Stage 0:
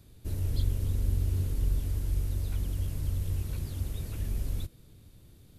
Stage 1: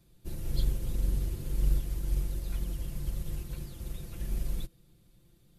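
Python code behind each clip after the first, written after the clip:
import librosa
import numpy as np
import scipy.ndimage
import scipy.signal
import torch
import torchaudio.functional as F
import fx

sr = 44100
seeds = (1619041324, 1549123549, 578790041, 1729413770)

y = x + 0.77 * np.pad(x, (int(5.8 * sr / 1000.0), 0))[:len(x)]
y = fx.upward_expand(y, sr, threshold_db=-40.0, expansion=1.5)
y = F.gain(torch.from_numpy(y), 1.0).numpy()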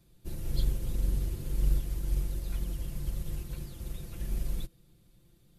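y = x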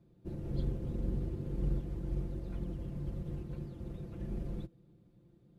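y = fx.bandpass_q(x, sr, hz=280.0, q=0.61)
y = F.gain(torch.from_numpy(y), 4.0).numpy()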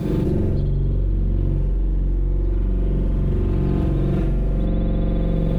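y = fx.rev_spring(x, sr, rt60_s=2.5, pass_ms=(43,), chirp_ms=45, drr_db=-7.0)
y = fx.env_flatten(y, sr, amount_pct=100)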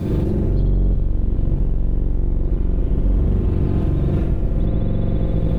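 y = fx.octave_divider(x, sr, octaves=1, level_db=1.0)
y = F.gain(torch.from_numpy(y), -1.5).numpy()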